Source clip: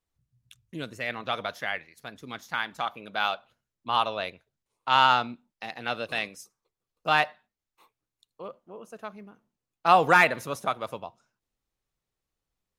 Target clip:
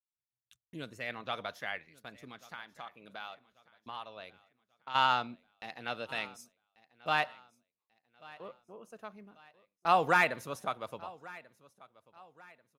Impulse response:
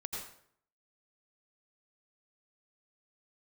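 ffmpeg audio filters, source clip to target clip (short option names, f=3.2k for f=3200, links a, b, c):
-filter_complex "[0:a]agate=range=-29dB:threshold=-54dB:ratio=16:detection=peak,asplit=3[a][b][c];[a]afade=t=out:st=2.27:d=0.02[d];[b]acompressor=threshold=-42dB:ratio=2,afade=t=in:st=2.27:d=0.02,afade=t=out:st=4.94:d=0.02[e];[c]afade=t=in:st=4.94:d=0.02[f];[d][e][f]amix=inputs=3:normalize=0,aecho=1:1:1139|2278|3417:0.0841|0.032|0.0121,volume=-7dB"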